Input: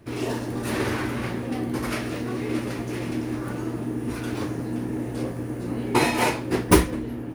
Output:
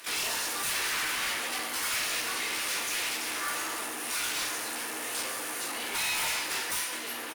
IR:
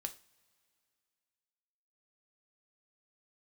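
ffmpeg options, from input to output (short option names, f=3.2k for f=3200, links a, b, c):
-filter_complex "[0:a]acompressor=threshold=-27dB:ratio=8[a];[1:a]atrim=start_sample=2205,asetrate=33957,aresample=44100[b];[a][b]afir=irnorm=-1:irlink=0,acontrast=75,highshelf=f=3k:g=12,asoftclip=type=hard:threshold=-22dB,highpass=1.2k,aecho=1:1:355|710|1065|1420|1775:0.0891|0.0517|0.03|0.0174|0.0101,asoftclip=type=tanh:threshold=-33dB,highshelf=f=10k:g=-3,asplit=2[c][d];[d]asetrate=66075,aresample=44100,atempo=0.66742,volume=-9dB[e];[c][e]amix=inputs=2:normalize=0,volume=5.5dB"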